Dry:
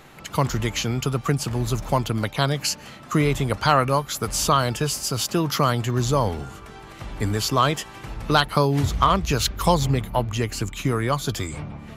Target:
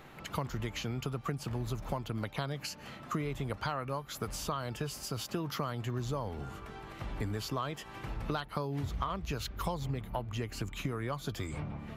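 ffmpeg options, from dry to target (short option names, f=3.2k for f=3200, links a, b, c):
-af "acompressor=threshold=-28dB:ratio=5,equalizer=f=7.9k:t=o:w=1.7:g=-7.5,volume=-4.5dB"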